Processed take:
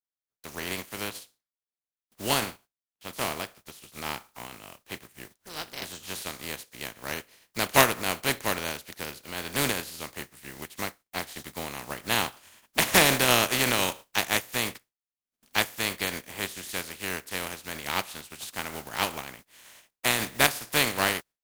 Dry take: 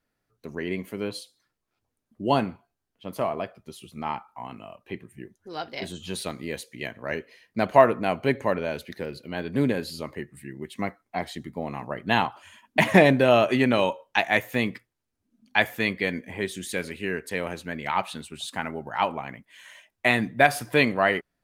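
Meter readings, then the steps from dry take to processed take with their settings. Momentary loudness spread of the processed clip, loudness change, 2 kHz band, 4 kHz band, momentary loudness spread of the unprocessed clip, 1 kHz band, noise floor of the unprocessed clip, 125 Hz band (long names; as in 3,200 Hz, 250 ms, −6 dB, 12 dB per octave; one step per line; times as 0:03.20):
19 LU, −2.0 dB, −2.0 dB, +5.5 dB, 19 LU, −4.5 dB, −80 dBFS, −6.0 dB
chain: compressing power law on the bin magnitudes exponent 0.32
noise gate with hold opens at −49 dBFS
level −3.5 dB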